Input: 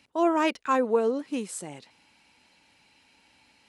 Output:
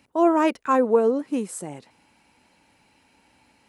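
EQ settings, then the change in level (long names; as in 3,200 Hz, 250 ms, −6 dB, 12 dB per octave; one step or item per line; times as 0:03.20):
parametric band 3,800 Hz −9.5 dB 2.1 octaves
+5.5 dB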